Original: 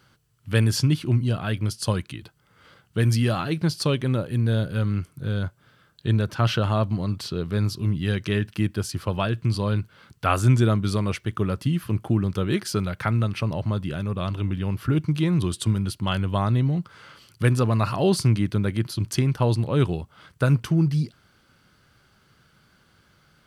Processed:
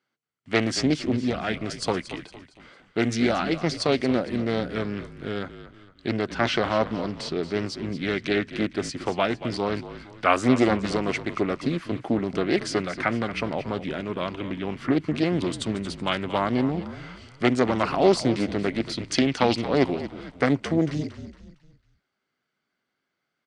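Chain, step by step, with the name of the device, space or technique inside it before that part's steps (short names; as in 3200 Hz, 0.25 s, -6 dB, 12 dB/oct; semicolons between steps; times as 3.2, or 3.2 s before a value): full-range speaker at full volume (Doppler distortion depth 0.79 ms; speaker cabinet 240–8400 Hz, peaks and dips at 260 Hz +7 dB, 390 Hz +4 dB, 700 Hz +6 dB, 2100 Hz +8 dB); gate with hold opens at -46 dBFS; LPF 9900 Hz 24 dB/oct; 18.82–19.61 bell 3100 Hz +3.5 dB -> +11.5 dB 1.7 oct; frequency-shifting echo 0.229 s, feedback 41%, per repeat -46 Hz, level -13 dB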